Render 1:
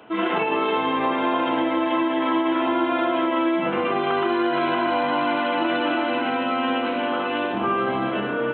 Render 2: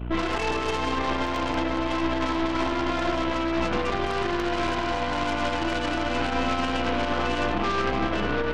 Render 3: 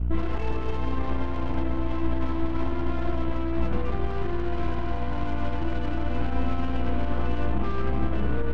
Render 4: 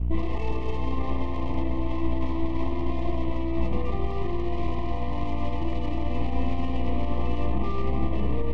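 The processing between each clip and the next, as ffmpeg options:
-af "aeval=exprs='val(0)+0.0282*(sin(2*PI*60*n/s)+sin(2*PI*2*60*n/s)/2+sin(2*PI*3*60*n/s)/3+sin(2*PI*4*60*n/s)/4+sin(2*PI*5*60*n/s)/5)':c=same,aeval=exprs='0.316*(cos(1*acos(clip(val(0)/0.316,-1,1)))-cos(1*PI/2))+0.141*(cos(2*acos(clip(val(0)/0.316,-1,1)))-cos(2*PI/2))+0.0501*(cos(8*acos(clip(val(0)/0.316,-1,1)))-cos(8*PI/2))':c=same,alimiter=limit=0.15:level=0:latency=1:release=51"
-af "aemphasis=mode=reproduction:type=riaa,volume=0.376"
-af "asuperstop=centerf=1500:order=20:qfactor=2.8"

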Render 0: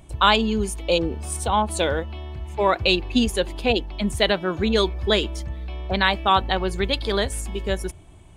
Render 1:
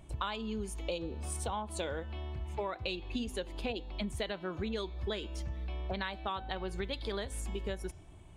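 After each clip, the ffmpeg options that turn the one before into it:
-af "highshelf=f=5900:g=-4.5,bandreject=f=253.8:t=h:w=4,bandreject=f=507.6:t=h:w=4,bandreject=f=761.4:t=h:w=4,bandreject=f=1015.2:t=h:w=4,bandreject=f=1269:t=h:w=4,bandreject=f=1522.8:t=h:w=4,bandreject=f=1776.6:t=h:w=4,bandreject=f=2030.4:t=h:w=4,bandreject=f=2284.2:t=h:w=4,bandreject=f=2538:t=h:w=4,bandreject=f=2791.8:t=h:w=4,bandreject=f=3045.6:t=h:w=4,bandreject=f=3299.4:t=h:w=4,bandreject=f=3553.2:t=h:w=4,bandreject=f=3807:t=h:w=4,bandreject=f=4060.8:t=h:w=4,bandreject=f=4314.6:t=h:w=4,bandreject=f=4568.4:t=h:w=4,bandreject=f=4822.2:t=h:w=4,bandreject=f=5076:t=h:w=4,bandreject=f=5329.8:t=h:w=4,bandreject=f=5583.6:t=h:w=4,bandreject=f=5837.4:t=h:w=4,bandreject=f=6091.2:t=h:w=4,bandreject=f=6345:t=h:w=4,bandreject=f=6598.8:t=h:w=4,bandreject=f=6852.6:t=h:w=4,bandreject=f=7106.4:t=h:w=4,bandreject=f=7360.2:t=h:w=4,bandreject=f=7614:t=h:w=4,acompressor=threshold=0.0447:ratio=10,volume=0.501"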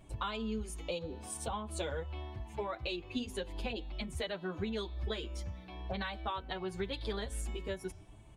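-filter_complex "[0:a]asplit=2[s0][s1];[s1]adelay=7.6,afreqshift=0.88[s2];[s0][s2]amix=inputs=2:normalize=1,volume=1.26"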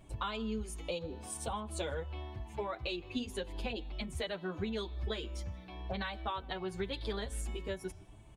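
-filter_complex "[0:a]asplit=2[s0][s1];[s1]adelay=157.4,volume=0.0398,highshelf=f=4000:g=-3.54[s2];[s0][s2]amix=inputs=2:normalize=0"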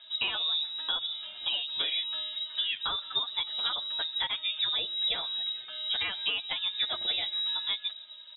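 -af "lowpass=f=3300:t=q:w=0.5098,lowpass=f=3300:t=q:w=0.6013,lowpass=f=3300:t=q:w=0.9,lowpass=f=3300:t=q:w=2.563,afreqshift=-3900,volume=2.11"

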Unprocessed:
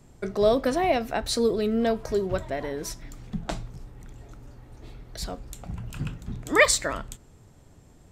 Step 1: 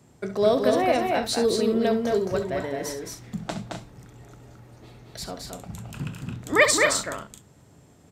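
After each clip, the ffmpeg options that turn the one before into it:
-filter_complex "[0:a]highpass=100,asplit=2[s0][s1];[s1]aecho=0:1:67.06|218.7|256.6:0.282|0.631|0.316[s2];[s0][s2]amix=inputs=2:normalize=0"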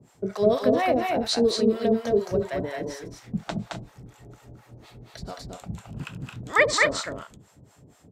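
-filter_complex "[0:a]acrossover=split=6600[s0][s1];[s1]acompressor=threshold=0.00224:ratio=4:attack=1:release=60[s2];[s0][s2]amix=inputs=2:normalize=0,acrossover=split=630[s3][s4];[s3]aeval=exprs='val(0)*(1-1/2+1/2*cos(2*PI*4.2*n/s))':c=same[s5];[s4]aeval=exprs='val(0)*(1-1/2-1/2*cos(2*PI*4.2*n/s))':c=same[s6];[s5][s6]amix=inputs=2:normalize=0,volume=1.68"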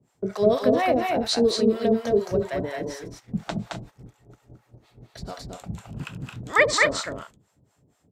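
-af "agate=range=0.282:threshold=0.00631:ratio=16:detection=peak,volume=1.12"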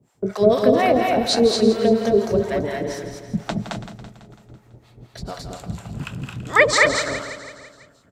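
-af "aecho=1:1:166|332|498|664|830|996:0.282|0.161|0.0916|0.0522|0.0298|0.017,volume=1.58"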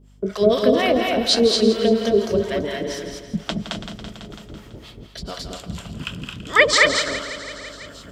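-af "equalizer=f=125:t=o:w=0.33:g=-11,equalizer=f=800:t=o:w=0.33:g=-8,equalizer=f=3150:t=o:w=0.33:g=11,equalizer=f=5000:t=o:w=0.33:g=5,areverse,acompressor=mode=upward:threshold=0.0447:ratio=2.5,areverse,aeval=exprs='val(0)+0.00355*(sin(2*PI*50*n/s)+sin(2*PI*2*50*n/s)/2+sin(2*PI*3*50*n/s)/3+sin(2*PI*4*50*n/s)/4+sin(2*PI*5*50*n/s)/5)':c=same"

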